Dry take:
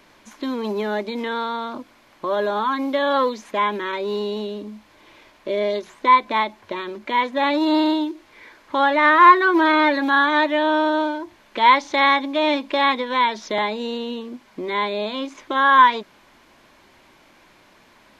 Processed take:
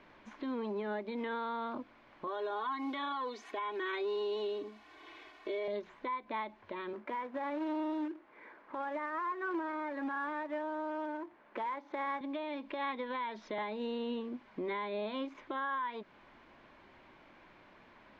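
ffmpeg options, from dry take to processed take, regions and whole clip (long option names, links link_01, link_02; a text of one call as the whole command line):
ffmpeg -i in.wav -filter_complex "[0:a]asettb=1/sr,asplit=3[link_01][link_02][link_03];[link_01]atrim=end=2.274[link_04];[link_02]atrim=start=2.27:end=5.68,asetpts=PTS-STARTPTS,afade=type=in:duration=0.004:curve=qsin,afade=type=out:start_time=3.406:duration=0.004:curve=qsin,aemphasis=mode=production:type=bsi,aecho=1:1:2.7:0.97,atrim=end_sample=150381[link_05];[link_03]atrim=start=5.676[link_06];[link_04][link_05]acrossfade=duration=0.004:curve1=hsin:curve2=qsin[link_07];[link_07][link_06]acrossfade=duration=0.004:curve1=qsin:curve2=hsin,asettb=1/sr,asplit=3[link_08][link_09][link_10];[link_08]atrim=end=6.934[link_11];[link_09]atrim=start=6.93:end=12.21,asetpts=PTS-STARTPTS,afade=type=in:duration=0.004:curve=qsin,afade=type=out:start_time=5.276:duration=0.004:curve=qsin,acrusher=bits=2:mode=log:mix=0:aa=0.000001,acrossover=split=190 2000:gain=0.141 1 0.251[link_12][link_13][link_14];[link_12][link_13][link_14]amix=inputs=3:normalize=0[link_15];[link_10]atrim=start=12.206[link_16];[link_11][link_15]acrossfade=duration=0.004:curve1=hsin:curve2=qsin[link_17];[link_17][link_16]acrossfade=duration=0.004:curve1=qsin:curve2=hsin,acompressor=threshold=-19dB:ratio=6,lowpass=2600,alimiter=limit=-24dB:level=0:latency=1:release=433,volume=-5.5dB" out.wav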